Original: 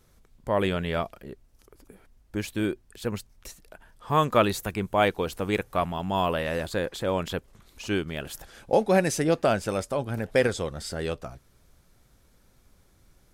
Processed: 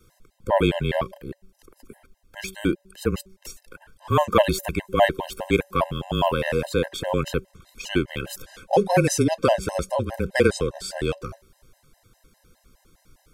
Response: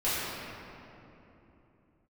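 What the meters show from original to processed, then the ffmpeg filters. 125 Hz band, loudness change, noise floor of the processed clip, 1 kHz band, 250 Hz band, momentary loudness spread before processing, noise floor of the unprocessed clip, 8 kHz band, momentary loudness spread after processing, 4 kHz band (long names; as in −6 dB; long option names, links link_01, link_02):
+4.0 dB, +3.5 dB, −65 dBFS, +2.5 dB, +3.0 dB, 15 LU, −61 dBFS, +4.5 dB, 16 LU, +3.5 dB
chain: -af "afreqshift=-27,bandreject=frequency=190.3:width_type=h:width=4,bandreject=frequency=380.6:width_type=h:width=4,bandreject=frequency=570.9:width_type=h:width=4,afftfilt=real='re*gt(sin(2*PI*4.9*pts/sr)*(1-2*mod(floor(b*sr/1024/530),2)),0)':imag='im*gt(sin(2*PI*4.9*pts/sr)*(1-2*mod(floor(b*sr/1024/530),2)),0)':win_size=1024:overlap=0.75,volume=7dB"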